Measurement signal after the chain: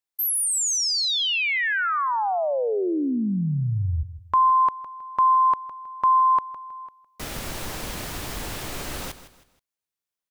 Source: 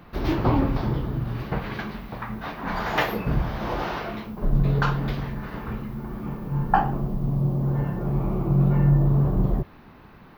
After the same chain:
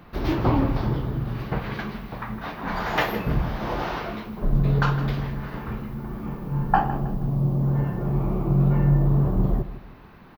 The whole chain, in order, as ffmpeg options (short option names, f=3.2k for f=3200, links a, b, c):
-af "aecho=1:1:159|318|477:0.2|0.0698|0.0244"